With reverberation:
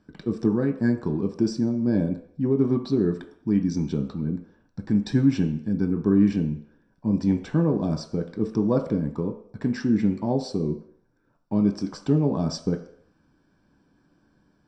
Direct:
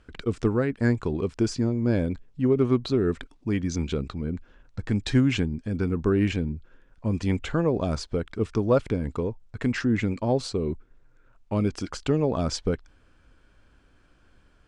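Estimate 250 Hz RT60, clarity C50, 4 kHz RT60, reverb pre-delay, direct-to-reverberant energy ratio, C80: 0.50 s, 10.0 dB, 0.60 s, 3 ms, 3.0 dB, 13.0 dB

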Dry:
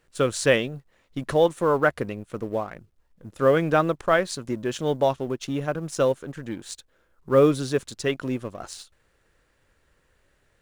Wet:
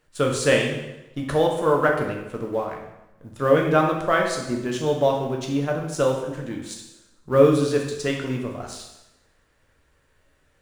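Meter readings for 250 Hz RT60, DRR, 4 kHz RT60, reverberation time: 0.95 s, 0.0 dB, 0.90 s, 0.90 s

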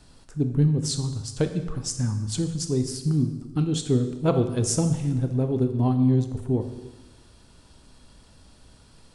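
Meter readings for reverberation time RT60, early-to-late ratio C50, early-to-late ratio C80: 1.2 s, 9.0 dB, 11.0 dB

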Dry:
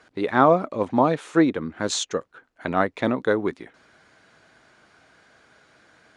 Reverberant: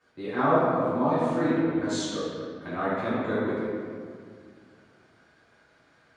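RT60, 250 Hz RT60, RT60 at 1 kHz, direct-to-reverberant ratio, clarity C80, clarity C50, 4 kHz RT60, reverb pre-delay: 2.1 s, 2.7 s, 1.9 s, −15.0 dB, −1.0 dB, −4.0 dB, 1.2 s, 3 ms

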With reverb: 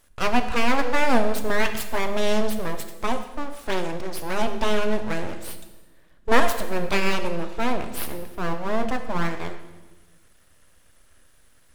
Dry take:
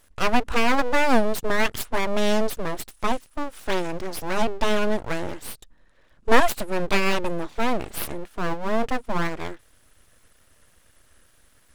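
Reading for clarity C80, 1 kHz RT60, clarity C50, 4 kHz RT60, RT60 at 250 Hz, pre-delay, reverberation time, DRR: 11.0 dB, 1.1 s, 9.5 dB, 1.1 s, 1.5 s, 7 ms, 1.2 s, 7.0 dB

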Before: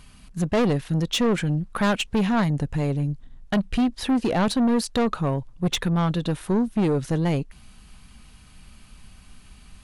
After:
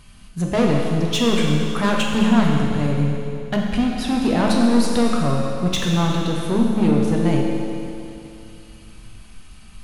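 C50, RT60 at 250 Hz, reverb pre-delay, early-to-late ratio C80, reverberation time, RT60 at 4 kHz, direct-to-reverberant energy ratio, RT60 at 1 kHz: 0.0 dB, 2.7 s, 9 ms, 1.5 dB, 2.7 s, 2.6 s, −2.0 dB, 2.7 s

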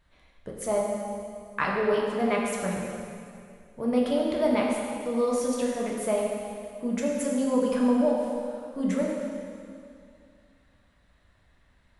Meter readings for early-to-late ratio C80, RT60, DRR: 1.5 dB, 2.4 s, −3.5 dB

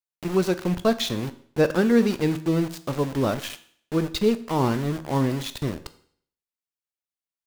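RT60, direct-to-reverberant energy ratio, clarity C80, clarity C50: 0.55 s, 11.0 dB, 18.5 dB, 16.0 dB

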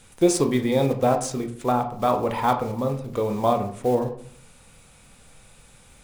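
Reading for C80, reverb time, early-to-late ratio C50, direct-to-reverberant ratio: 14.0 dB, 0.55 s, 10.5 dB, 5.0 dB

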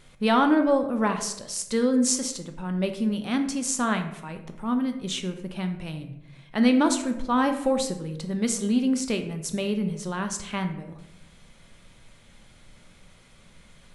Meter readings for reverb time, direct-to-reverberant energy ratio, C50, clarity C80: 0.85 s, 6.0 dB, 9.5 dB, 12.0 dB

